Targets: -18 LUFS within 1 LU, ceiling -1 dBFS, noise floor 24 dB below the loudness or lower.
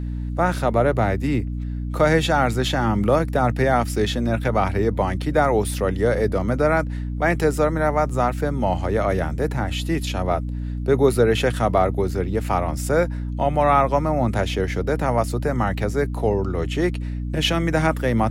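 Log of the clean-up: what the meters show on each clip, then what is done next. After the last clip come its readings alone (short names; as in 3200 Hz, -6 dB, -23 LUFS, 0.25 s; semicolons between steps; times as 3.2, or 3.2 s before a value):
hum 60 Hz; harmonics up to 300 Hz; hum level -24 dBFS; loudness -21.5 LUFS; peak -4.5 dBFS; loudness target -18.0 LUFS
-> de-hum 60 Hz, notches 5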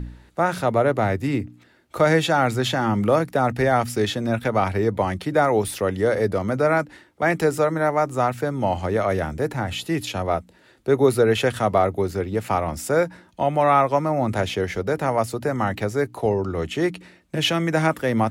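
hum none; loudness -22.0 LUFS; peak -5.5 dBFS; loudness target -18.0 LUFS
-> gain +4 dB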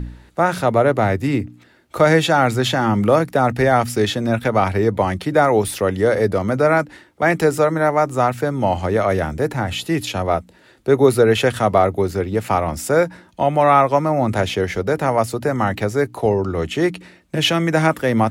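loudness -18.0 LUFS; peak -1.5 dBFS; noise floor -51 dBFS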